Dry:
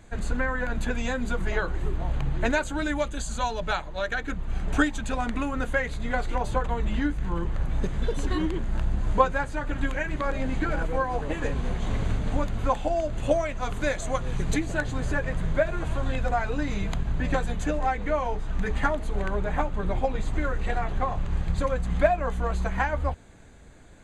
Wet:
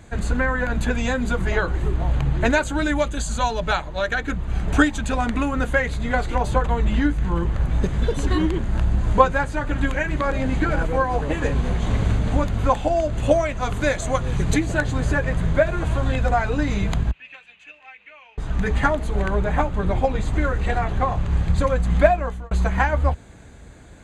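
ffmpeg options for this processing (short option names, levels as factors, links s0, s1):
-filter_complex "[0:a]asettb=1/sr,asplit=3[s0][s1][s2];[s0]atrim=end=17.114[s3];[s1]atrim=start=17.11:end=18.38,asetpts=PTS-STARTPTS,afade=t=in:d=0.004:c=qsin,afade=t=out:st=1.266:d=0.004:c=qsin,bandpass=f=2600:t=q:w=9.1[s4];[s2]atrim=start=18.376[s5];[s3][s4]acrossfade=d=0.004:c1=hsin:c2=qsin[s6];[s6][s5]acrossfade=d=0.004:c1=qsin:c2=hsin,asplit=2[s7][s8];[s7]atrim=end=22.51,asetpts=PTS-STARTPTS,afade=t=out:st=22.09:d=0.42[s9];[s8]atrim=start=22.51,asetpts=PTS-STARTPTS,afade=t=in:d=0.004:c=hsin[s10];[s9][s10]concat=n=2:v=0:a=1,highpass=51,lowshelf=f=91:g=7,volume=1.88"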